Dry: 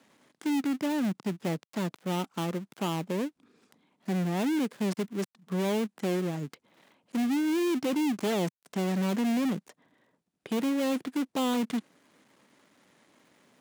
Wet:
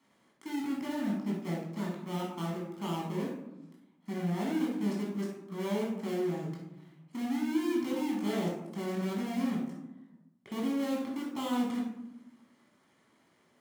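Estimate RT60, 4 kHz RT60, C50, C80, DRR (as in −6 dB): 0.95 s, 0.45 s, 2.0 dB, 6.0 dB, −4.0 dB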